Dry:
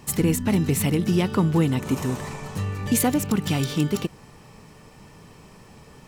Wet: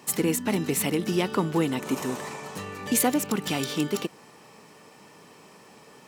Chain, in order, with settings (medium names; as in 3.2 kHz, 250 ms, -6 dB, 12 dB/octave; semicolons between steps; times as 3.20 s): high-pass 270 Hz 12 dB/octave